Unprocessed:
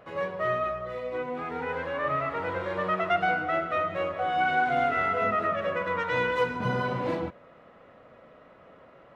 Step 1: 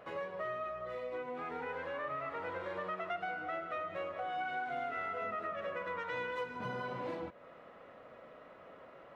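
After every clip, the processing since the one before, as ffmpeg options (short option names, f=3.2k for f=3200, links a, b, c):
-af "bass=f=250:g=-6,treble=f=4k:g=-1,acompressor=threshold=-39dB:ratio=3,volume=-1dB"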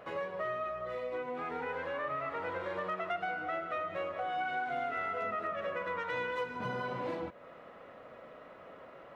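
-af "asoftclip=type=hard:threshold=-29dB,volume=3dB"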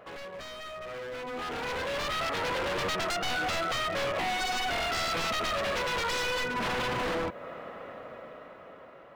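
-af "aeval=exprs='0.0141*(abs(mod(val(0)/0.0141+3,4)-2)-1)':c=same,dynaudnorm=f=360:g=9:m=11.5dB"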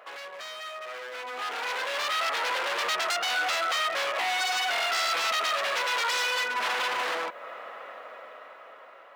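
-af "highpass=760,volume=4.5dB"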